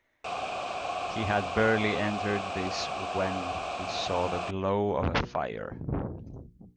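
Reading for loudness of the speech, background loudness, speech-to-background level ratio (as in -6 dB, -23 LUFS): -31.0 LUFS, -34.0 LUFS, 3.0 dB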